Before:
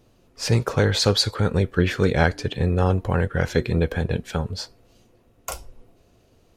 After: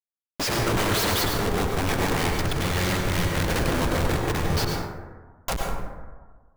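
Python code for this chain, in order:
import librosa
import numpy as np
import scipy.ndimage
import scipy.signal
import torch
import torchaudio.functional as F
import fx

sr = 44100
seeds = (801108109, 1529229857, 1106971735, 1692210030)

p1 = fx.peak_eq(x, sr, hz=1200.0, db=-6.5, octaves=2.5, at=(1.17, 2.58))
p2 = (np.mod(10.0 ** (17.5 / 20.0) * p1 + 1.0, 2.0) - 1.0) / 10.0 ** (17.5 / 20.0)
p3 = fx.level_steps(p2, sr, step_db=14)
p4 = p2 + F.gain(torch.from_numpy(p3), 0.0).numpy()
p5 = fx.spec_erase(p4, sr, start_s=2.14, length_s=1.34, low_hz=210.0, high_hz=1700.0)
p6 = fx.high_shelf(p5, sr, hz=11000.0, db=7.5, at=(4.41, 5.53))
p7 = fx.schmitt(p6, sr, flips_db=-28.0)
p8 = fx.rev_plate(p7, sr, seeds[0], rt60_s=1.4, hf_ratio=0.35, predelay_ms=85, drr_db=0.0)
y = F.gain(torch.from_numpy(p8), -2.0).numpy()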